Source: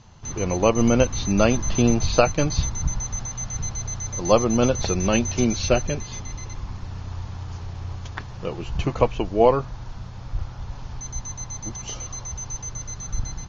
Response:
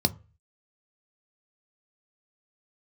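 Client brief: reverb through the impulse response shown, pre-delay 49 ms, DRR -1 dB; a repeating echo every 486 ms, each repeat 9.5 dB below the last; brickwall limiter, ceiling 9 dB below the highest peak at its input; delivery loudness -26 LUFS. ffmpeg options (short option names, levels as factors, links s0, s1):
-filter_complex "[0:a]alimiter=limit=0.299:level=0:latency=1,aecho=1:1:486|972|1458|1944:0.335|0.111|0.0365|0.012,asplit=2[s0][s1];[1:a]atrim=start_sample=2205,adelay=49[s2];[s1][s2]afir=irnorm=-1:irlink=0,volume=0.376[s3];[s0][s3]amix=inputs=2:normalize=0,volume=0.355"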